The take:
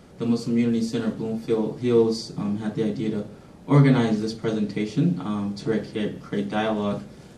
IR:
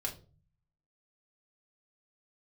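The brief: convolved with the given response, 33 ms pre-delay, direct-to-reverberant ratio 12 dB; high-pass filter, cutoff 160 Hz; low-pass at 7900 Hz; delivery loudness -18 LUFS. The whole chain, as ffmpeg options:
-filter_complex "[0:a]highpass=160,lowpass=7.9k,asplit=2[a][b];[1:a]atrim=start_sample=2205,adelay=33[c];[b][c]afir=irnorm=-1:irlink=0,volume=-13.5dB[d];[a][d]amix=inputs=2:normalize=0,volume=7dB"

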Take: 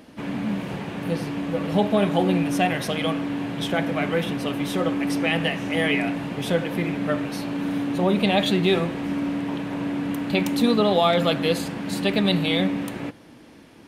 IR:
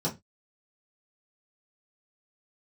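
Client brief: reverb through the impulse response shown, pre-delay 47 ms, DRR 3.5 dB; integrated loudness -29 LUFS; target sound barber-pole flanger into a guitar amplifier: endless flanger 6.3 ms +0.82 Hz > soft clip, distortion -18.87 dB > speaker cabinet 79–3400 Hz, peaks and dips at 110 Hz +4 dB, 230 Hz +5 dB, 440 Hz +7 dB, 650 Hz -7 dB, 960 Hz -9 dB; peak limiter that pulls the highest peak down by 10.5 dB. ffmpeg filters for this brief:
-filter_complex "[0:a]alimiter=limit=-18.5dB:level=0:latency=1,asplit=2[a][b];[1:a]atrim=start_sample=2205,adelay=47[c];[b][c]afir=irnorm=-1:irlink=0,volume=-10.5dB[d];[a][d]amix=inputs=2:normalize=0,asplit=2[e][f];[f]adelay=6.3,afreqshift=0.82[g];[e][g]amix=inputs=2:normalize=1,asoftclip=threshold=-16dB,highpass=79,equalizer=f=110:t=q:w=4:g=4,equalizer=f=230:t=q:w=4:g=5,equalizer=f=440:t=q:w=4:g=7,equalizer=f=650:t=q:w=4:g=-7,equalizer=f=960:t=q:w=4:g=-9,lowpass=f=3.4k:w=0.5412,lowpass=f=3.4k:w=1.3066,volume=-4dB"

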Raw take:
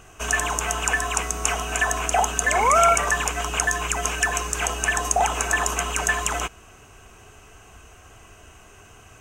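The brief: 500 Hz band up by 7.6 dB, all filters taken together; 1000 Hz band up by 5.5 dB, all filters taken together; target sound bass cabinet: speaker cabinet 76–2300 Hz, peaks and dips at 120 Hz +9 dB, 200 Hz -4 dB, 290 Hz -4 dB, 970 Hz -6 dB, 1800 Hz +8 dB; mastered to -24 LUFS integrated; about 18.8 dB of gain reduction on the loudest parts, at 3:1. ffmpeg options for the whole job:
-af "equalizer=f=500:t=o:g=9,equalizer=f=1k:t=o:g=6.5,acompressor=threshold=-34dB:ratio=3,highpass=f=76:w=0.5412,highpass=f=76:w=1.3066,equalizer=f=120:t=q:w=4:g=9,equalizer=f=200:t=q:w=4:g=-4,equalizer=f=290:t=q:w=4:g=-4,equalizer=f=970:t=q:w=4:g=-6,equalizer=f=1.8k:t=q:w=4:g=8,lowpass=f=2.3k:w=0.5412,lowpass=f=2.3k:w=1.3066,volume=7.5dB"

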